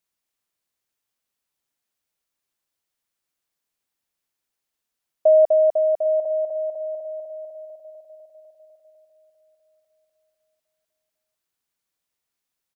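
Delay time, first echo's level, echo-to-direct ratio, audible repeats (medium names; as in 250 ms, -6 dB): 799 ms, -15.5 dB, -15.0 dB, 3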